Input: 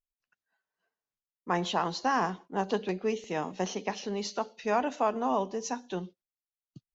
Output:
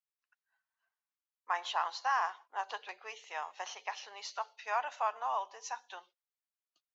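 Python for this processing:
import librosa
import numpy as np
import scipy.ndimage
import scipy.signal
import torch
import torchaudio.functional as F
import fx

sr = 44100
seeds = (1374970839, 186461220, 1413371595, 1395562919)

y = scipy.signal.sosfilt(scipy.signal.butter(4, 850.0, 'highpass', fs=sr, output='sos'), x)
y = fx.high_shelf(y, sr, hz=3600.0, db=-9.0)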